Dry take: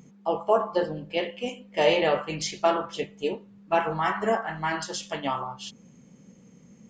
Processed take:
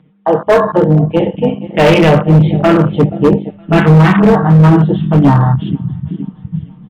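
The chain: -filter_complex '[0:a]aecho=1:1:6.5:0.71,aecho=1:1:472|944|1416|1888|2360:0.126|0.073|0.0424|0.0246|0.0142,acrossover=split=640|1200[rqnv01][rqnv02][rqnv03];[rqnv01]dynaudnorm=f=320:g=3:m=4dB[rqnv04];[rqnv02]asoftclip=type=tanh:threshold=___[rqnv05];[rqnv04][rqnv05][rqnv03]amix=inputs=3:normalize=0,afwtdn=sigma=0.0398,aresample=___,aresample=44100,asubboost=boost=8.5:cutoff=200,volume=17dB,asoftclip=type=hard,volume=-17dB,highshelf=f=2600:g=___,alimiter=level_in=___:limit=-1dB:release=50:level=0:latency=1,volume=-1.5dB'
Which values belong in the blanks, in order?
-24.5dB, 8000, 3, 18dB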